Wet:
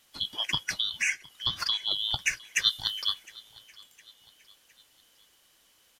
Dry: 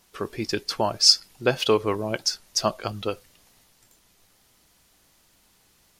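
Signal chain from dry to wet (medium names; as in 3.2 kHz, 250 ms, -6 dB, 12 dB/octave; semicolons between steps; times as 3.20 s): four frequency bands reordered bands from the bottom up 2413; 0.74–1.91 s: compression 6:1, threshold -23 dBFS, peak gain reduction 12.5 dB; 2.66–3.12 s: treble shelf 5.9 kHz -> 9.4 kHz +10 dB; feedback delay 710 ms, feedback 47%, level -23 dB; trim -2.5 dB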